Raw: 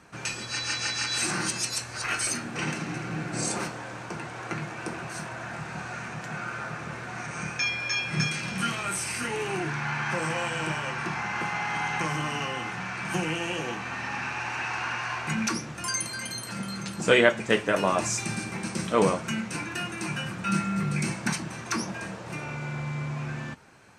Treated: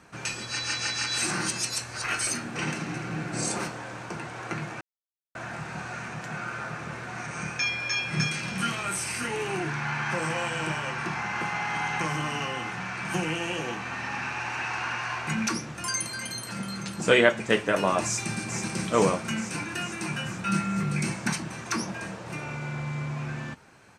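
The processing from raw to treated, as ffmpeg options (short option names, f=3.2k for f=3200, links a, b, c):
-filter_complex "[0:a]asplit=2[a][b];[b]afade=t=in:st=18.04:d=0.01,afade=t=out:st=18.61:d=0.01,aecho=0:1:440|880|1320|1760|2200|2640|3080|3520|3960|4400|4840:0.473151|0.331206|0.231844|0.162291|0.113604|0.0795225|0.0556658|0.038966|0.0272762|0.0190934|0.0133654[c];[a][c]amix=inputs=2:normalize=0,asplit=3[d][e][f];[d]atrim=end=4.81,asetpts=PTS-STARTPTS,afade=t=out:st=4.806:d=0.004:c=hsin[g];[e]atrim=start=4.81:end=5.35,asetpts=PTS-STARTPTS,volume=0[h];[f]atrim=start=5.35,asetpts=PTS-STARTPTS,afade=t=in:d=0.004:c=hsin[i];[g][h][i]concat=n=3:v=0:a=1"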